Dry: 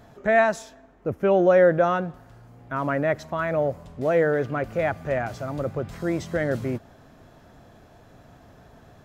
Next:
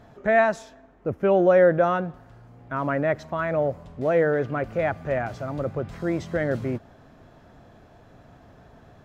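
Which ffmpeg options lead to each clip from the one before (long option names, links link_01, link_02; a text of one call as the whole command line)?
ffmpeg -i in.wav -af "highshelf=frequency=6400:gain=-10.5" out.wav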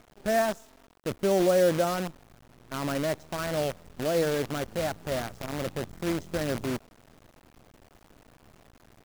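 ffmpeg -i in.wav -af "equalizer=frequency=125:width_type=o:width=1:gain=-6,equalizer=frequency=500:width_type=o:width=1:gain=-4,equalizer=frequency=1000:width_type=o:width=1:gain=-6,equalizer=frequency=2000:width_type=o:width=1:gain=-8,equalizer=frequency=4000:width_type=o:width=1:gain=-10,acrusher=bits=6:dc=4:mix=0:aa=0.000001" out.wav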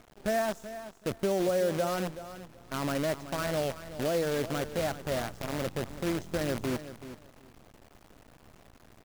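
ffmpeg -i in.wav -af "acompressor=threshold=-26dB:ratio=3,aecho=1:1:379|758:0.224|0.0403" out.wav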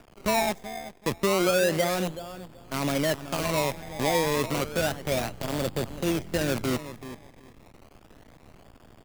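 ffmpeg -i in.wav -filter_complex "[0:a]acrossover=split=140|1600|2700[link_01][link_02][link_03][link_04];[link_02]acrusher=samples=21:mix=1:aa=0.000001:lfo=1:lforange=21:lforate=0.31[link_05];[link_04]aeval=exprs='sgn(val(0))*max(abs(val(0))-0.00266,0)':channel_layout=same[link_06];[link_01][link_05][link_03][link_06]amix=inputs=4:normalize=0,volume=4.5dB" out.wav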